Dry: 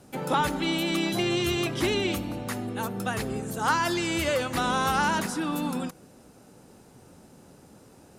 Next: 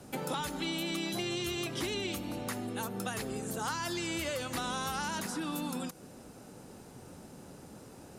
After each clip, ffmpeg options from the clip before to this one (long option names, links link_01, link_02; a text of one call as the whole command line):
ffmpeg -i in.wav -filter_complex "[0:a]acrossover=split=190|3500[link_01][link_02][link_03];[link_01]acompressor=threshold=-49dB:ratio=4[link_04];[link_02]acompressor=threshold=-39dB:ratio=4[link_05];[link_03]acompressor=threshold=-43dB:ratio=4[link_06];[link_04][link_05][link_06]amix=inputs=3:normalize=0,volume=2dB" out.wav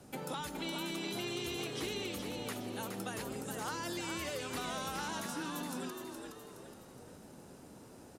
ffmpeg -i in.wav -filter_complex "[0:a]asplit=6[link_01][link_02][link_03][link_04][link_05][link_06];[link_02]adelay=418,afreqshift=76,volume=-5.5dB[link_07];[link_03]adelay=836,afreqshift=152,volume=-13dB[link_08];[link_04]adelay=1254,afreqshift=228,volume=-20.6dB[link_09];[link_05]adelay=1672,afreqshift=304,volume=-28.1dB[link_10];[link_06]adelay=2090,afreqshift=380,volume=-35.6dB[link_11];[link_01][link_07][link_08][link_09][link_10][link_11]amix=inputs=6:normalize=0,volume=-5dB" out.wav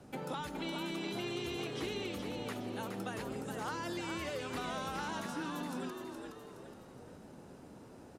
ffmpeg -i in.wav -af "highshelf=frequency=5000:gain=-11,volume=1dB" out.wav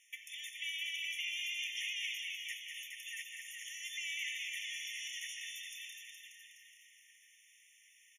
ffmpeg -i in.wav -af "aecho=1:1:198.3|256.6:0.501|0.355,afftfilt=real='re*eq(mod(floor(b*sr/1024/1800),2),1)':imag='im*eq(mod(floor(b*sr/1024/1800),2),1)':win_size=1024:overlap=0.75,volume=6dB" out.wav